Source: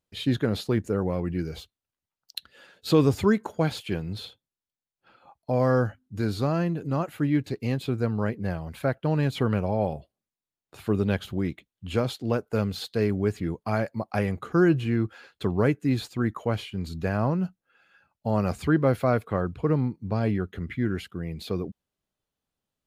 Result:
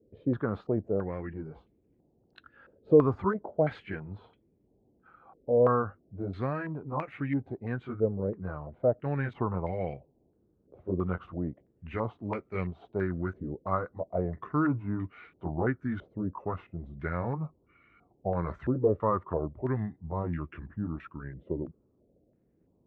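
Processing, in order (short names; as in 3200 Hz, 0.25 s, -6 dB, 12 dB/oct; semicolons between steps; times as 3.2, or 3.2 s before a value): gliding pitch shift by -3.5 st starting unshifted; band noise 37–400 Hz -63 dBFS; stepped low-pass 3 Hz 520–2200 Hz; gain -6.5 dB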